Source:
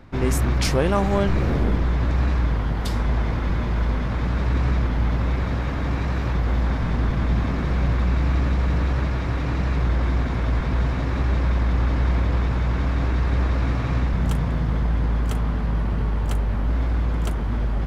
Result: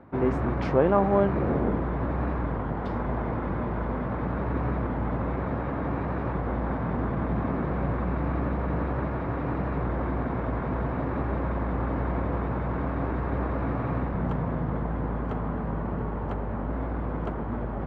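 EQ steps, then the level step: HPF 280 Hz 6 dB/oct; LPF 1100 Hz 12 dB/oct; +2.5 dB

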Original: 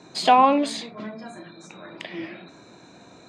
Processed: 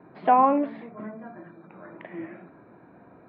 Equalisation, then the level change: LPF 1900 Hz 24 dB/oct; air absorption 180 m; -2.0 dB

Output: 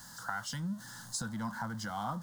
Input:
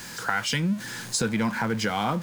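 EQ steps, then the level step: fixed phaser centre 1000 Hz, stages 4; -8.5 dB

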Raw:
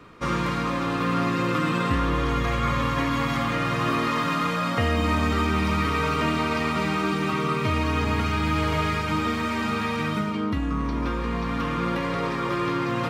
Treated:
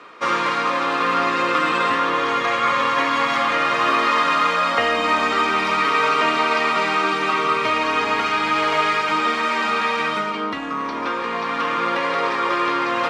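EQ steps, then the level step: HPF 530 Hz 12 dB/oct; air absorption 65 m; +9.0 dB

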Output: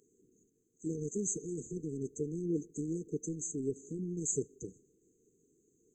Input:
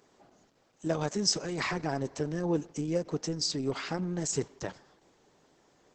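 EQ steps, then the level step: brick-wall FIR band-stop 480–6100 Hz; low shelf 290 Hz -7.5 dB; 0.0 dB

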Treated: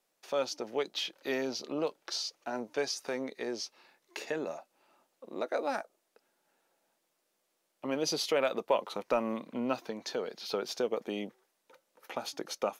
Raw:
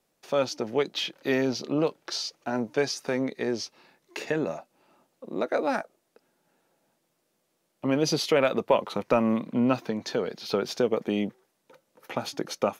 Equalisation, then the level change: bell 84 Hz -14 dB 2.5 oct; dynamic EQ 1900 Hz, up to -4 dB, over -43 dBFS, Q 0.78; low shelf 410 Hz -4 dB; -2.5 dB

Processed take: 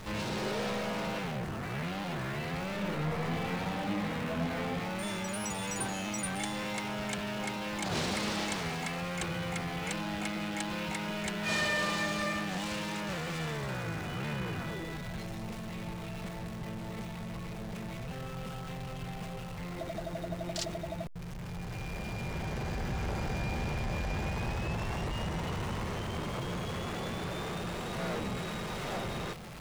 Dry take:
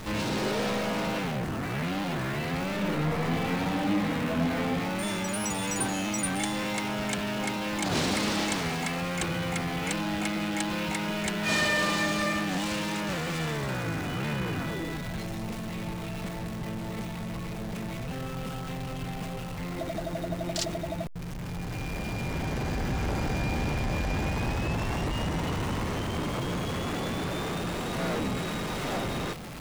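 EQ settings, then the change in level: bell 280 Hz -11 dB 0.22 oct; high shelf 9100 Hz -3.5 dB; -4.5 dB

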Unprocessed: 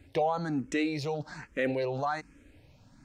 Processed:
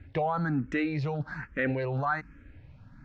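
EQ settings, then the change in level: air absorption 130 m; tone controls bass +13 dB, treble -2 dB; bell 1500 Hz +13 dB 1.2 oct; -4.5 dB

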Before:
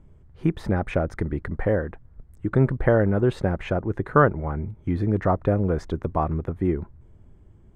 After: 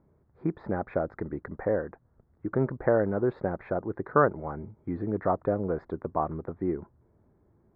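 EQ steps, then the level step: running mean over 15 samples; HPF 430 Hz 6 dB/oct; air absorption 210 m; 0.0 dB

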